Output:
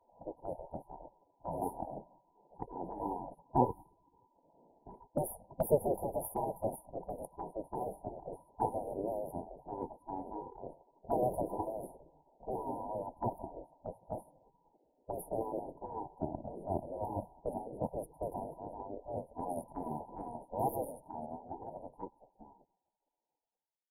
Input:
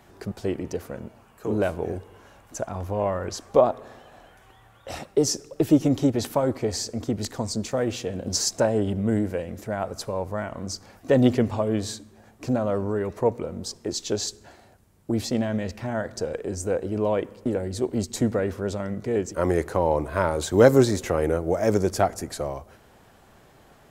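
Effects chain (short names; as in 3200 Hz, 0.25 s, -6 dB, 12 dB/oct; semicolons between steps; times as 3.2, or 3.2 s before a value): ending faded out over 6.36 s; FFT band-reject 1000–9400 Hz; 5.45–7.35 dynamic EQ 380 Hz, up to +5 dB, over -34 dBFS, Q 2.6; low-pass opened by the level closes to 540 Hz, open at -20.5 dBFS; spectral gate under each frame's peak -15 dB weak; gain +2.5 dB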